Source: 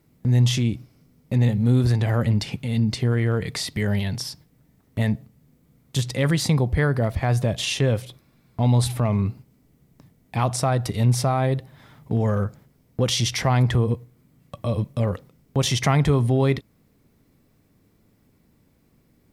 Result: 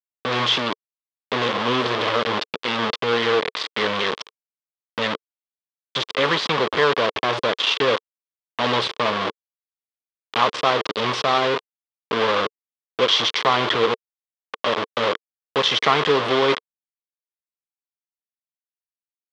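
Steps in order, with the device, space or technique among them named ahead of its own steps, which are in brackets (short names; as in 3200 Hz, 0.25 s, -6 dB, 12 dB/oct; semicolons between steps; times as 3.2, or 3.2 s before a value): hand-held game console (bit-crush 4-bit; speaker cabinet 420–4400 Hz, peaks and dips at 450 Hz +6 dB, 730 Hz -4 dB, 1100 Hz +7 dB, 3300 Hz +6 dB); gain +4 dB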